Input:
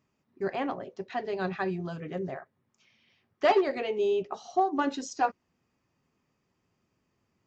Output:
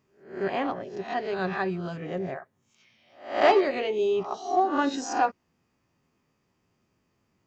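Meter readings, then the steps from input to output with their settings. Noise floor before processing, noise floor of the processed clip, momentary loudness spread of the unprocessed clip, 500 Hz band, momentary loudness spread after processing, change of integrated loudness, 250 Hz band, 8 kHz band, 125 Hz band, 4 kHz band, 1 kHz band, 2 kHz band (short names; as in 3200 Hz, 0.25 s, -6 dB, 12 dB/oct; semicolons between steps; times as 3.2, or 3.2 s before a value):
-78 dBFS, -74 dBFS, 11 LU, +3.0 dB, 12 LU, +3.0 dB, +2.5 dB, n/a, +2.0 dB, +4.0 dB, +3.5 dB, +4.5 dB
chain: spectral swells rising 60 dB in 0.46 s; gain +1.5 dB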